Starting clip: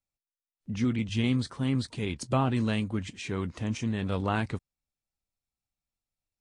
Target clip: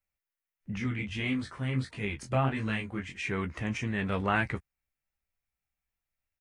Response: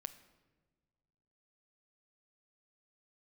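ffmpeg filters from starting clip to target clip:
-filter_complex "[0:a]equalizer=frequency=125:width_type=o:width=1:gain=-4,equalizer=frequency=250:width_type=o:width=1:gain=-6,equalizer=frequency=500:width_type=o:width=1:gain=-3,equalizer=frequency=1000:width_type=o:width=1:gain=-3,equalizer=frequency=2000:width_type=o:width=1:gain=7,equalizer=frequency=4000:width_type=o:width=1:gain=-9,equalizer=frequency=8000:width_type=o:width=1:gain=-7,asplit=3[link_01][link_02][link_03];[link_01]afade=type=out:start_time=0.77:duration=0.02[link_04];[link_02]flanger=delay=19:depth=5.6:speed=1.5,afade=type=in:start_time=0.77:duration=0.02,afade=type=out:start_time=3.14:duration=0.02[link_05];[link_03]afade=type=in:start_time=3.14:duration=0.02[link_06];[link_04][link_05][link_06]amix=inputs=3:normalize=0,asplit=2[link_07][link_08];[link_08]adelay=15,volume=-7.5dB[link_09];[link_07][link_09]amix=inputs=2:normalize=0,volume=3.5dB"

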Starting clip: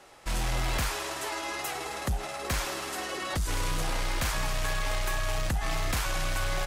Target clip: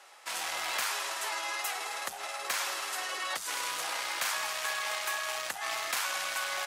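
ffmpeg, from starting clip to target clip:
ffmpeg -i in.wav -af "highpass=820,volume=1dB" out.wav

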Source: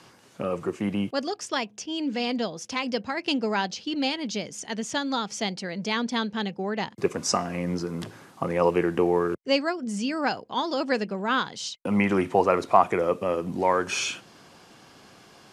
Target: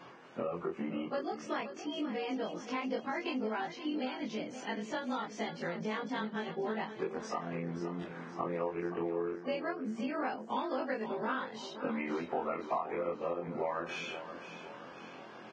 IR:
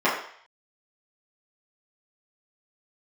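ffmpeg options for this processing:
-af "afftfilt=real='re':imag='-im':win_size=2048:overlap=0.75,acompressor=threshold=-40dB:ratio=6,highpass=200,lowpass=2200,aecho=1:1:525|1050|1575|2100|2625:0.282|0.144|0.0733|0.0374|0.0191,volume=7dB" -ar 22050 -c:a libvorbis -b:a 16k

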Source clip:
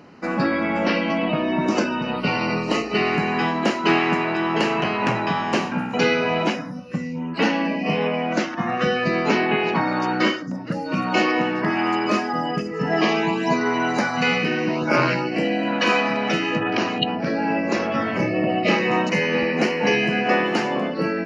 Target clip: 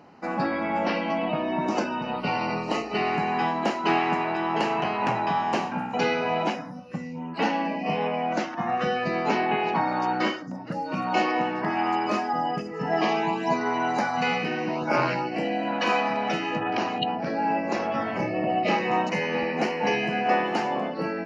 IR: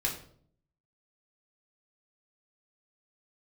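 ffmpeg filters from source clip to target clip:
-af "equalizer=frequency=800:width=2.3:gain=9,volume=-7dB"

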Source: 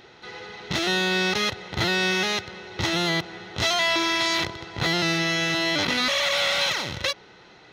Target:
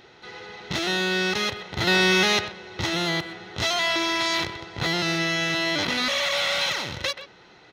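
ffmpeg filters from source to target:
ffmpeg -i in.wav -filter_complex "[0:a]asplit=2[link_01][link_02];[link_02]adelay=130,highpass=300,lowpass=3400,asoftclip=type=hard:threshold=-17dB,volume=-11dB[link_03];[link_01][link_03]amix=inputs=2:normalize=0,asettb=1/sr,asplit=3[link_04][link_05][link_06];[link_04]atrim=end=1.874[link_07];[link_05]atrim=start=1.87:end=2.48,asetpts=PTS-STARTPTS,afade=type=in:duration=0.004:curve=qsin,afade=type=out:start_time=0.606:duration=0.004:curve=qsin,acontrast=49[link_08];[link_06]atrim=start=2.476[link_09];[link_07][link_08]acrossfade=duration=0.004:curve1=hsin:curve2=qsin[link_10];[link_10][link_09]acrossfade=duration=0.004:curve1=qsin:curve2=hsin,volume=-1.5dB" out.wav

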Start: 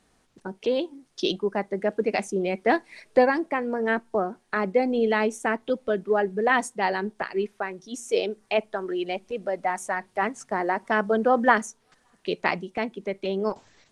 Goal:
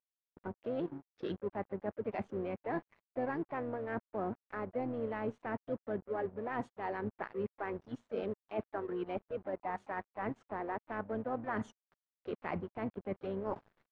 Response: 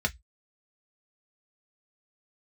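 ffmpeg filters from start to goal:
-filter_complex "[0:a]asplit=4[link_01][link_02][link_03][link_04];[link_02]asetrate=22050,aresample=44100,atempo=2,volume=-12dB[link_05];[link_03]asetrate=52444,aresample=44100,atempo=0.840896,volume=-18dB[link_06];[link_04]asetrate=58866,aresample=44100,atempo=0.749154,volume=-14dB[link_07];[link_01][link_05][link_06][link_07]amix=inputs=4:normalize=0,equalizer=frequency=100:width_type=o:width=1.2:gain=3.5,areverse,acompressor=threshold=-36dB:ratio=6,areverse,aeval=exprs='sgn(val(0))*max(abs(val(0))-0.00251,0)':channel_layout=same,lowpass=1600,volume=2dB"

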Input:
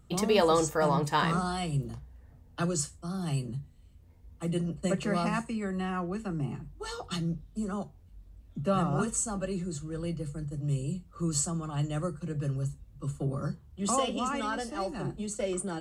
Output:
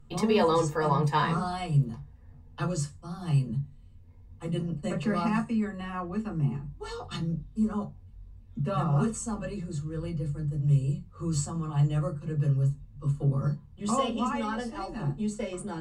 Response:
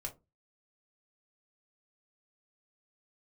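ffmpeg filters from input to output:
-filter_complex "[0:a]highshelf=frequency=8000:gain=-10[link_01];[1:a]atrim=start_sample=2205,asetrate=74970,aresample=44100[link_02];[link_01][link_02]afir=irnorm=-1:irlink=0,volume=6dB"

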